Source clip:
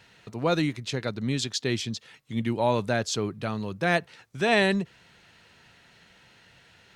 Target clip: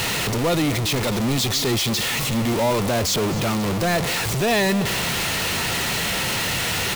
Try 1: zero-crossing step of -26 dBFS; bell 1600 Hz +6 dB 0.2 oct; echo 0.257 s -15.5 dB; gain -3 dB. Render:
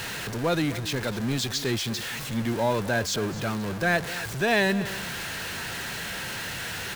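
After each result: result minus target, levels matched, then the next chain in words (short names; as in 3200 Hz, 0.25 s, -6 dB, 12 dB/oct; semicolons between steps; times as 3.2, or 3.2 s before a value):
zero-crossing step: distortion -7 dB; 2000 Hz band +3.0 dB
zero-crossing step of -14.5 dBFS; bell 1600 Hz +6 dB 0.2 oct; echo 0.257 s -15.5 dB; gain -3 dB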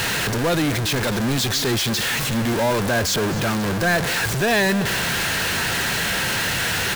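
2000 Hz band +3.0 dB
zero-crossing step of -14.5 dBFS; bell 1600 Hz -6 dB 0.2 oct; echo 0.257 s -15.5 dB; gain -3 dB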